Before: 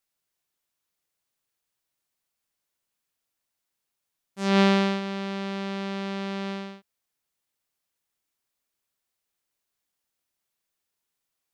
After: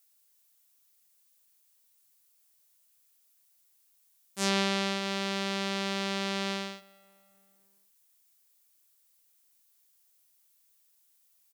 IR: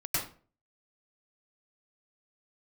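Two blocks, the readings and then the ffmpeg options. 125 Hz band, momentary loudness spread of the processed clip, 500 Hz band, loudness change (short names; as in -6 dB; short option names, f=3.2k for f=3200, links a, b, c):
n/a, 10 LU, -5.5 dB, -4.5 dB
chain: -filter_complex "[0:a]lowshelf=f=120:g=-10.5,acompressor=threshold=-26dB:ratio=5,crystalizer=i=3.5:c=0,asplit=2[a][b];[b]adelay=277,lowpass=f=3k:p=1,volume=-23dB,asplit=2[c][d];[d]adelay=277,lowpass=f=3k:p=1,volume=0.53,asplit=2[e][f];[f]adelay=277,lowpass=f=3k:p=1,volume=0.53,asplit=2[g][h];[h]adelay=277,lowpass=f=3k:p=1,volume=0.53[i];[c][e][g][i]amix=inputs=4:normalize=0[j];[a][j]amix=inputs=2:normalize=0"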